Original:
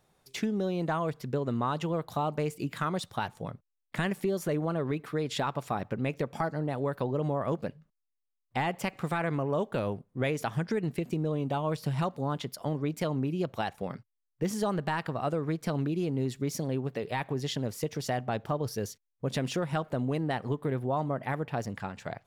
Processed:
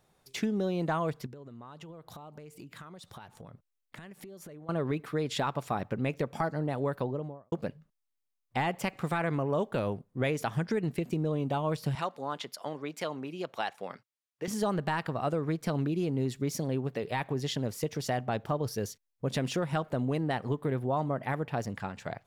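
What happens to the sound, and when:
1.26–4.69 s: compression 16:1, threshold -43 dBFS
6.90–7.52 s: studio fade out
11.95–14.48 s: frequency weighting A

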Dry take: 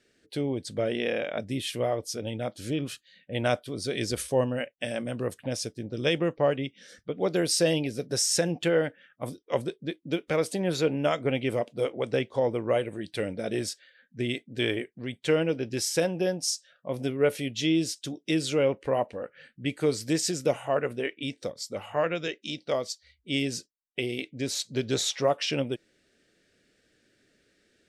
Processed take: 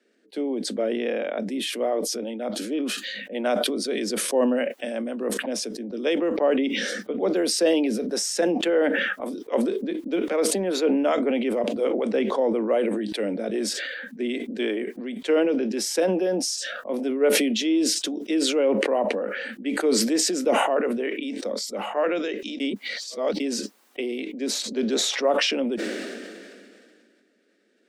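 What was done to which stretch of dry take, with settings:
22.60–23.40 s: reverse
whole clip: steep high-pass 200 Hz 96 dB/octave; treble shelf 2 kHz -10 dB; decay stretcher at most 26 dB/s; trim +3 dB

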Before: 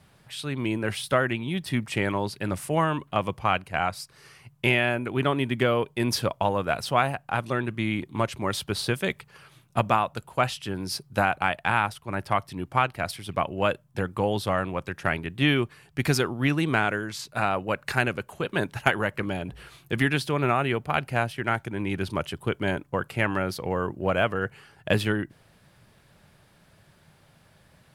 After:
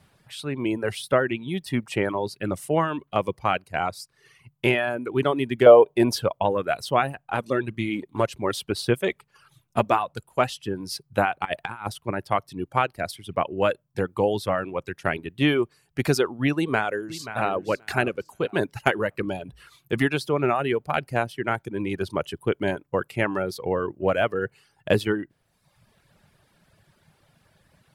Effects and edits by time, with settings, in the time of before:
5.66–6.13 s: peaking EQ 650 Hz +14 dB 1.2 oct
7.16–10.69 s: phaser 1.7 Hz, delay 5 ms, feedback 29%
11.45–12.11 s: compressor with a negative ratio -28 dBFS, ratio -0.5
16.55–17.56 s: echo throw 530 ms, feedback 30%, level -11 dB
whole clip: reverb removal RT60 0.95 s; dynamic bell 420 Hz, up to +7 dB, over -40 dBFS, Q 1; trim -1 dB

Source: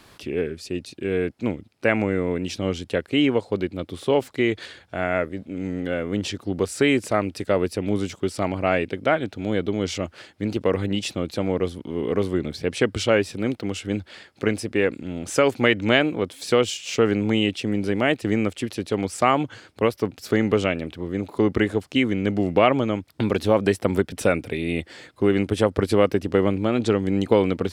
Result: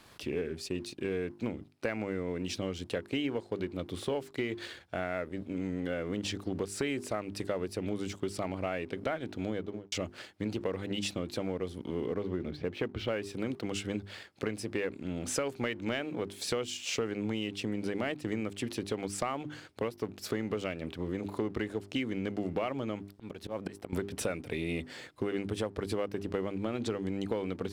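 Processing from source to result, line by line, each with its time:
9.43–9.92 s: studio fade out
12.06–13.08 s: distance through air 310 m
23.12–23.93 s: slow attack 432 ms
whole clip: hum notches 50/100/150/200/250/300/350/400 Hz; compression, threshold -27 dBFS; waveshaping leveller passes 1; trim -6.5 dB

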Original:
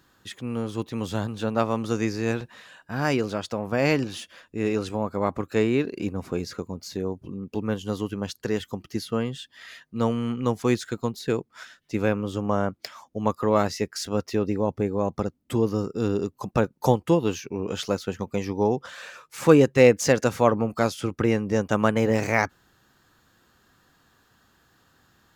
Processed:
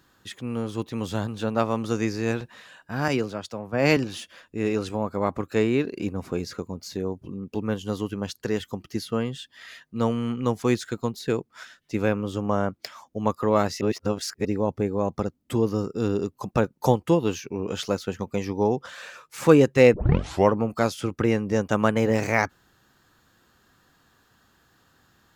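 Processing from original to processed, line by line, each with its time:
3.08–3.97 s: three bands expanded up and down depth 100%
13.81–14.45 s: reverse
19.94 s: tape start 0.59 s

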